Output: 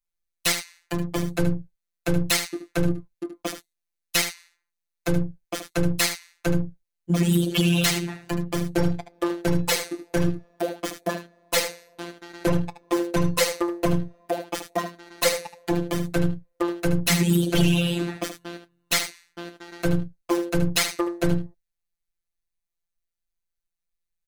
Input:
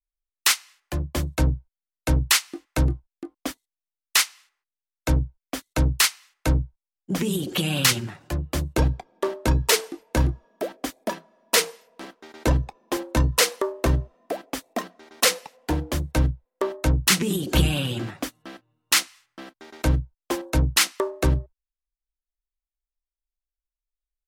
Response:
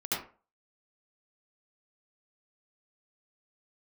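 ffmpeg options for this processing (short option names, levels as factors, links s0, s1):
-af "afftfilt=real='hypot(re,im)*cos(PI*b)':imag='0':win_size=1024:overlap=0.75,aeval=exprs='clip(val(0),-1,0.126)':c=same,aecho=1:1:75:0.316,volume=2"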